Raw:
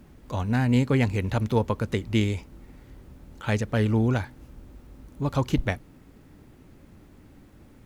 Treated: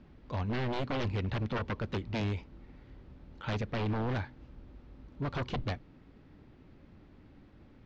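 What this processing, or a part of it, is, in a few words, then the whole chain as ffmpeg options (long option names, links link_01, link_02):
synthesiser wavefolder: -af "aeval=exprs='0.0794*(abs(mod(val(0)/0.0794+3,4)-2)-1)':channel_layout=same,lowpass=frequency=4600:width=0.5412,lowpass=frequency=4600:width=1.3066,volume=-5dB"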